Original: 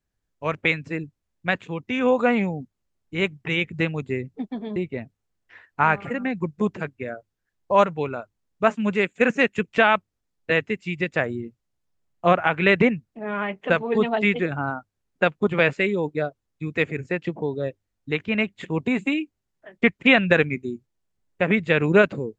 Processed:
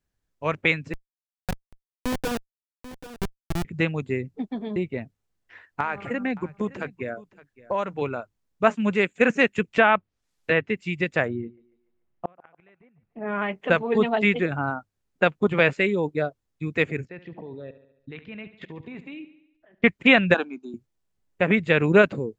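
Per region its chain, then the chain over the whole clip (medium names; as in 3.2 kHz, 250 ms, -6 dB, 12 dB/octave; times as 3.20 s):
0.93–3.65 s: Schmitt trigger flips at -16.5 dBFS + delay 788 ms -14.5 dB
5.80–8.02 s: compression, threshold -21 dBFS + band-stop 160 Hz, Q 5.2 + delay 566 ms -20.5 dB
9.79–10.77 s: low-pass that closes with the level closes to 2.6 kHz, closed at -17.5 dBFS + tape noise reduction on one side only encoder only
11.28–13.42 s: low-pass 2.5 kHz + inverted gate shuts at -14 dBFS, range -40 dB + thinning echo 145 ms, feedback 50%, high-pass 330 Hz, level -20 dB
17.05–19.84 s: low-pass 4.9 kHz 24 dB/octave + level held to a coarse grid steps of 19 dB + feedback delay 71 ms, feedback 56%, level -14 dB
20.34–20.74 s: cabinet simulation 310–5900 Hz, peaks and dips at 380 Hz -8 dB, 580 Hz +8 dB, 850 Hz +5 dB, 1.5 kHz +6 dB, 2.3 kHz -4 dB + upward compressor, threshold -35 dBFS + static phaser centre 530 Hz, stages 6
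whole clip: none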